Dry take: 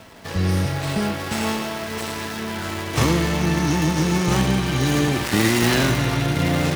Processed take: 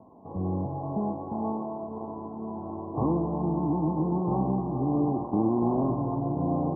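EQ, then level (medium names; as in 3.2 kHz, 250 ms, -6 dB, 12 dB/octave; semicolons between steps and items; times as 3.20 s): high-pass 120 Hz 6 dB/octave; rippled Chebyshev low-pass 1.1 kHz, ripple 6 dB; dynamic bell 680 Hz, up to +3 dB, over -38 dBFS, Q 1.8; -3.0 dB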